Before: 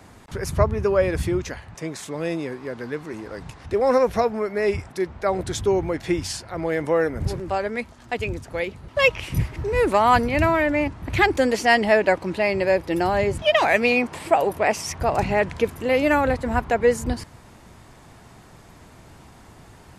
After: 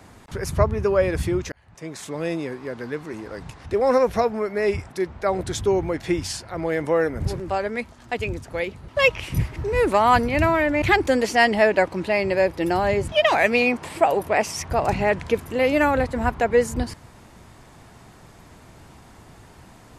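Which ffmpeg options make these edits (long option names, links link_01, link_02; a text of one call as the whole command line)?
ffmpeg -i in.wav -filter_complex "[0:a]asplit=3[link_01][link_02][link_03];[link_01]atrim=end=1.52,asetpts=PTS-STARTPTS,afade=type=out:start_time=1.516:duration=0.004:curve=hsin[link_04];[link_02]atrim=start=1.52:end=10.822,asetpts=PTS-STARTPTS,afade=type=in:duration=0.55[link_05];[link_03]atrim=start=11.118[link_06];[link_04][link_05]concat=n=2:v=0:a=1[link_07];[link_07][link_06]acrossfade=duration=0.004:curve1=hsin:curve2=hsin" out.wav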